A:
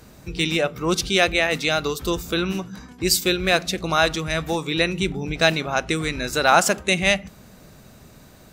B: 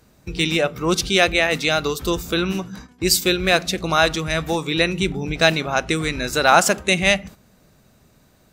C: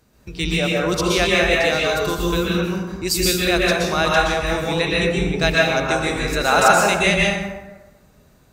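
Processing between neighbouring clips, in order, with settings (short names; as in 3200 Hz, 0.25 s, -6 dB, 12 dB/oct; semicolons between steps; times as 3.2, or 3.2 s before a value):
gate -39 dBFS, range -10 dB; gain +2 dB
plate-style reverb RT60 1.2 s, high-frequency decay 0.5×, pre-delay 0.11 s, DRR -4.5 dB; gain -4.5 dB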